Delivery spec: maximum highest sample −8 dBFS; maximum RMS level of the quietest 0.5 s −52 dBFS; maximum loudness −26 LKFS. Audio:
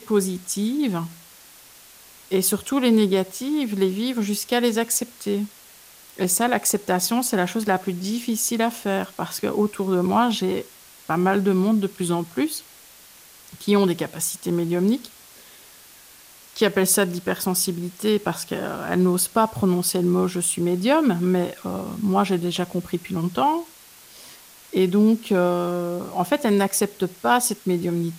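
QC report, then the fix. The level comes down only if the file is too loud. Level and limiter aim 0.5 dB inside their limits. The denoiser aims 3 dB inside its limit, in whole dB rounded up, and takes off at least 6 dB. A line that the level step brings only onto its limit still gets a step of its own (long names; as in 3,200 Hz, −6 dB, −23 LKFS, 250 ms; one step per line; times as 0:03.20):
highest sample −5.0 dBFS: out of spec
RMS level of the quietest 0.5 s −48 dBFS: out of spec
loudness −22.5 LKFS: out of spec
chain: broadband denoise 6 dB, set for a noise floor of −48 dBFS
level −4 dB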